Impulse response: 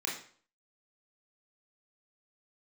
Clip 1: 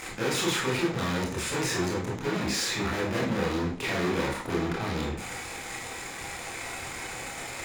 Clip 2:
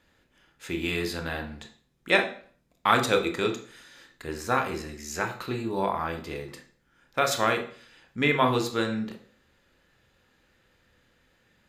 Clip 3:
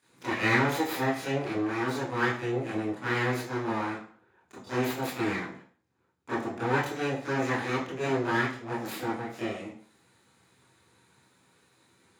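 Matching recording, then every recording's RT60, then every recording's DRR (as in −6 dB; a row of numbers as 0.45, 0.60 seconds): 1; 0.50, 0.50, 0.50 seconds; −3.5, 5.0, −10.0 decibels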